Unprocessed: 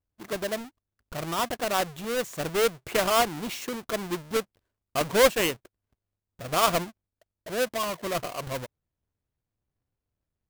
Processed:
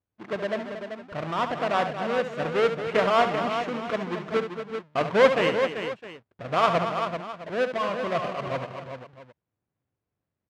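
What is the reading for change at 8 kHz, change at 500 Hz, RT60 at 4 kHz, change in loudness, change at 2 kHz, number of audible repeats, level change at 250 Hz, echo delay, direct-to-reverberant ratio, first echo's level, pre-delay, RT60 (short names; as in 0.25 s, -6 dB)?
under -15 dB, +3.0 dB, none, +1.5 dB, +2.0 dB, 5, +2.5 dB, 70 ms, none, -9.5 dB, none, none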